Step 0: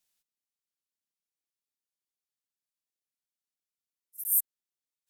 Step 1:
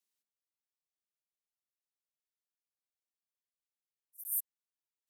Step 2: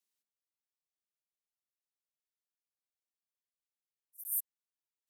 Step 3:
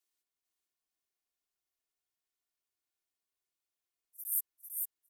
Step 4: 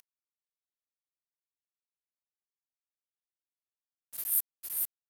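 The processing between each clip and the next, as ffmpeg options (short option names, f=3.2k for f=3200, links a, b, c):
-af "afreqshift=200,volume=-9dB"
-af anull
-filter_complex "[0:a]aecho=1:1:2.8:0.65,asplit=2[a][b];[b]aecho=0:1:448|896|1344|1792|2240:0.631|0.265|0.111|0.0467|0.0196[c];[a][c]amix=inputs=2:normalize=0"
-af "acompressor=mode=upward:threshold=-36dB:ratio=2.5,acrusher=bits=6:mix=0:aa=0.5,volume=4.5dB"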